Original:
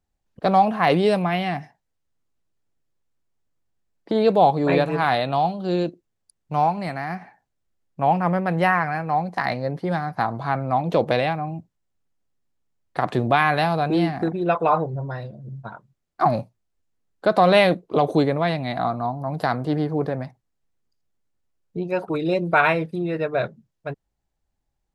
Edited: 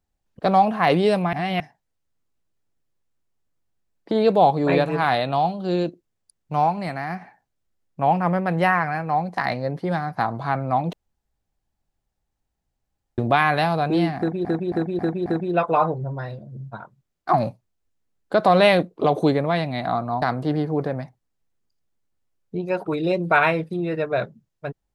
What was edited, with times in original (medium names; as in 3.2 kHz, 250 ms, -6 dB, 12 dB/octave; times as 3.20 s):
1.33–1.60 s: reverse
10.93–13.18 s: room tone
14.18–14.45 s: loop, 5 plays
19.14–19.44 s: delete